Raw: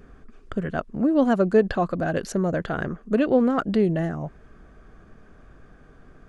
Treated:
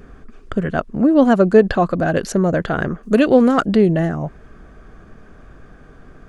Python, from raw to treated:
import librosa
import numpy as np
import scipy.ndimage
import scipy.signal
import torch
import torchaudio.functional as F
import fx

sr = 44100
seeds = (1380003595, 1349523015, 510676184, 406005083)

y = fx.high_shelf(x, sr, hz=3700.0, db=11.0, at=(3.03, 3.66))
y = y * 10.0 ** (7.0 / 20.0)